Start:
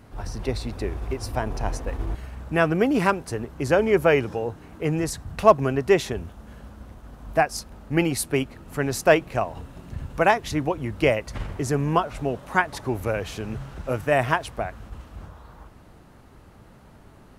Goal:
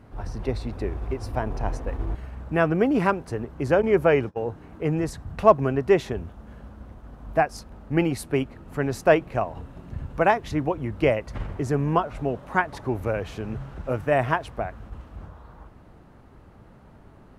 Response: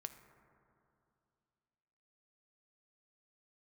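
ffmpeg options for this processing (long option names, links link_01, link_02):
-filter_complex "[0:a]asettb=1/sr,asplit=3[link_01][link_02][link_03];[link_01]atrim=end=3.824[link_04];[link_02]atrim=start=3.82:end=4.45,asetpts=PTS-STARTPTS,afade=type=in:duration=0.004:curve=qsin,afade=type=out:start_time=0.626:duration=0.004:curve=qsin,agate=range=-28dB:threshold=-27dB:ratio=16:detection=peak[link_05];[link_03]atrim=start=4.446[link_06];[link_04][link_05]acrossfade=duration=0.004:curve1=hsin:curve2=qsin[link_07];[link_07][link_06]acrossfade=duration=0.004:curve1=qsin:curve2=hsin,highshelf=frequency=3100:gain=-11.5"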